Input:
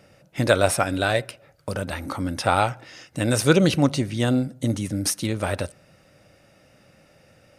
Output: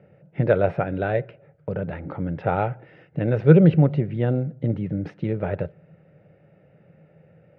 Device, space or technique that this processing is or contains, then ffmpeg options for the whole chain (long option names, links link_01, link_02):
bass cabinet: -af "highpass=90,equalizer=frequency=160:width_type=q:width=4:gain=10,equalizer=frequency=260:width_type=q:width=4:gain=-9,equalizer=frequency=440:width_type=q:width=4:gain=6,equalizer=frequency=1100:width_type=q:width=4:gain=-9,lowpass=frequency=2400:width=0.5412,lowpass=frequency=2400:width=1.3066,tiltshelf=frequency=880:gain=4.5,volume=-3dB"